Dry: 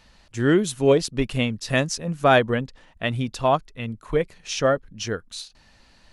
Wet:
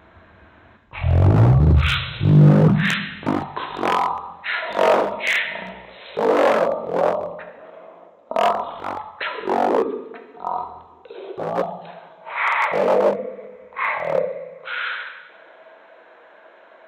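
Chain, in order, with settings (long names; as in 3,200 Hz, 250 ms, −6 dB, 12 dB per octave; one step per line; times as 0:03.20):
in parallel at −1 dB: compressor whose output falls as the input rises −20 dBFS, ratio −0.5
on the sum: coupled-rooms reverb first 0.36 s, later 1.7 s, from −25 dB, DRR 4 dB
change of speed 0.363×
wave folding −11.5 dBFS
high-pass filter sweep 86 Hz → 510 Hz, 0:01.84–0:04.10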